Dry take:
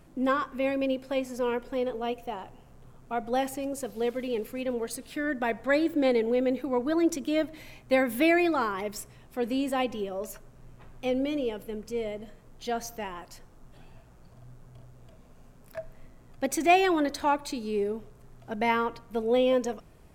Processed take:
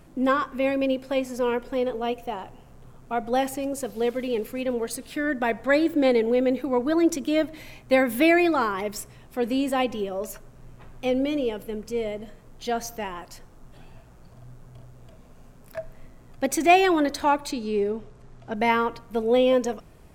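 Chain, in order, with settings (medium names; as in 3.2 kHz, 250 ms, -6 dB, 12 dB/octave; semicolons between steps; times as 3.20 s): 17.51–18.56 s: low-pass 7.1 kHz 12 dB/octave; trim +4 dB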